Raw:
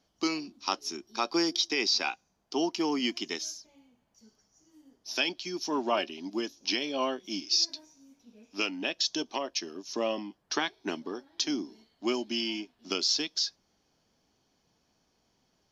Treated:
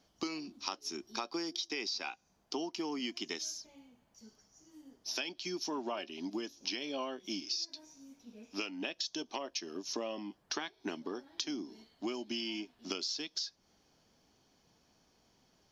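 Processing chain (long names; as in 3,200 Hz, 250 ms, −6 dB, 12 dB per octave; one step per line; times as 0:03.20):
downward compressor 6 to 1, threshold −38 dBFS, peak gain reduction 15 dB
level +2.5 dB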